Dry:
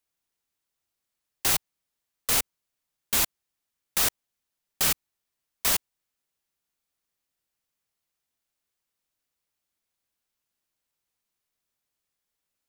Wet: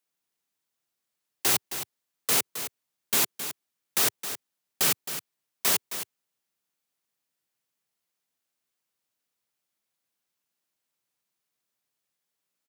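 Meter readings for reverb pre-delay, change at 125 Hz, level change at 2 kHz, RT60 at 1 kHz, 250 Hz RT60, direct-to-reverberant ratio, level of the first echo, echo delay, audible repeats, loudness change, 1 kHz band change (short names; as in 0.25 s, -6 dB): none, -2.0 dB, +0.5 dB, none, none, none, -10.5 dB, 0.266 s, 1, -1.0 dB, +0.5 dB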